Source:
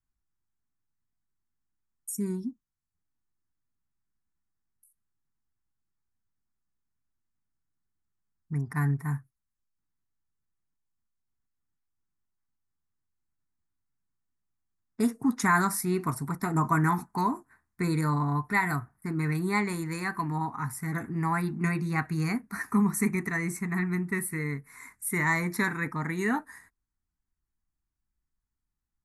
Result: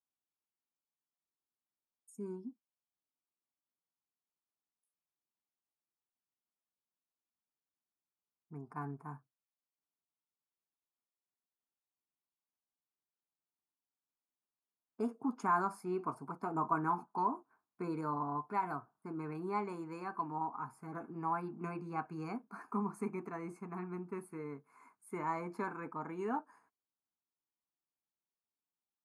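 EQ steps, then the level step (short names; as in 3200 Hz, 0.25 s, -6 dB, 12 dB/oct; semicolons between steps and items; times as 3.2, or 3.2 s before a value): running mean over 23 samples; Bessel high-pass 540 Hz, order 2; 0.0 dB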